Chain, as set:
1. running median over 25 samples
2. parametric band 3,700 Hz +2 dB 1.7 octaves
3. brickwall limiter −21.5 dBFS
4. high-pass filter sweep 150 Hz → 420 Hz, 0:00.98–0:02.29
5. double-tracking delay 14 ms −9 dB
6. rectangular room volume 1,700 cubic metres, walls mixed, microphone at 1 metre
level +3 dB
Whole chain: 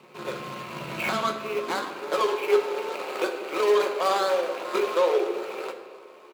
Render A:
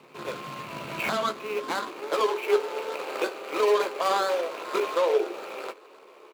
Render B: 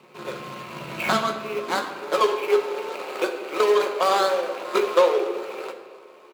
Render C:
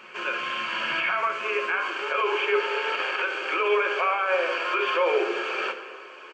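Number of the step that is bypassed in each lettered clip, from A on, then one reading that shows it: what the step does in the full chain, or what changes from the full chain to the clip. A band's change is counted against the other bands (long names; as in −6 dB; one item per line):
6, echo-to-direct ratio −5.0 dB to none audible
3, change in momentary loudness spread +2 LU
1, 2 kHz band +9.0 dB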